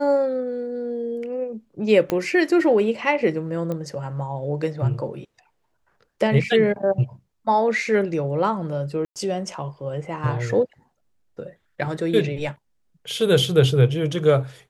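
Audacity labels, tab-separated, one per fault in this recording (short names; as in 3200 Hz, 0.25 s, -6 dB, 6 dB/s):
2.100000	2.100000	pop -9 dBFS
3.720000	3.720000	pop -17 dBFS
9.050000	9.160000	gap 0.108 s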